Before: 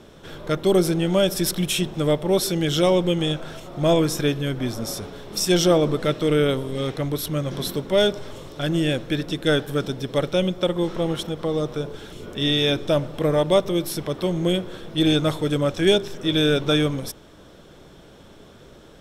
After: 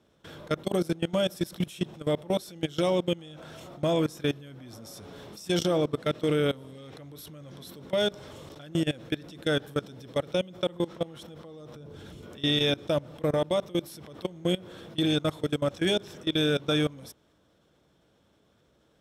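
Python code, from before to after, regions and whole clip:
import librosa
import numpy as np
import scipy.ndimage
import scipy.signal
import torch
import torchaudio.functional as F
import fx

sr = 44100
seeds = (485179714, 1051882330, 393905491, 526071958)

y = fx.chain(x, sr, fx.over_compress(threshold_db=-32.0, ratio=-1.0),
    fx.low_shelf(hz=270.0, db=10.5), at=(11.74, 12.22))
y = scipy.signal.sosfilt(scipy.signal.butter(4, 51.0, 'highpass', fs=sr, output='sos'), y)
y = fx.notch(y, sr, hz=390.0, q=12.0)
y = fx.level_steps(y, sr, step_db=21)
y = y * librosa.db_to_amplitude(-3.0)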